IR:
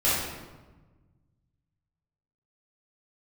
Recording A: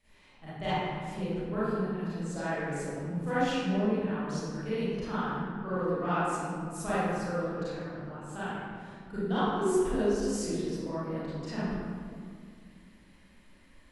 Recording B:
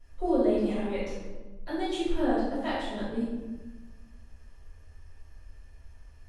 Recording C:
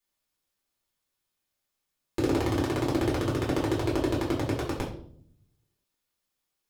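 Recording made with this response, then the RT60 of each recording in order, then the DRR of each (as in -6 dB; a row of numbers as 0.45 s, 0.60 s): B; 2.2 s, 1.2 s, 0.60 s; -13.5 dB, -11.5 dB, -5.5 dB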